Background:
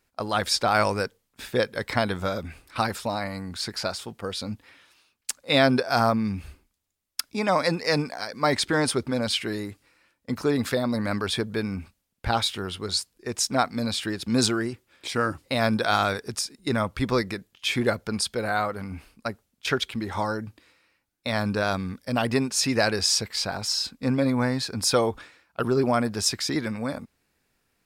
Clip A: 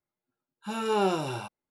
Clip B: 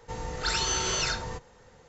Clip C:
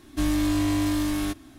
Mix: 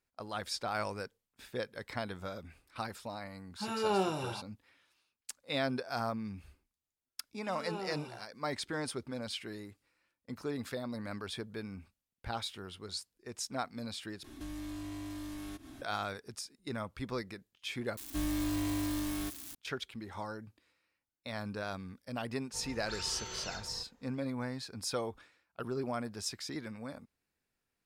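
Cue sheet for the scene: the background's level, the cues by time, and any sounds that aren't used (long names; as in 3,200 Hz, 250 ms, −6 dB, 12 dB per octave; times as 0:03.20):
background −14 dB
0:02.94: mix in A −5 dB
0:06.78: mix in A −16 dB
0:14.24: overwrite with C −1.5 dB + downward compressor 3 to 1, threshold −44 dBFS
0:17.97: overwrite with C −10 dB + spike at every zero crossing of −25.5 dBFS
0:22.45: mix in B −14.5 dB, fades 0.10 s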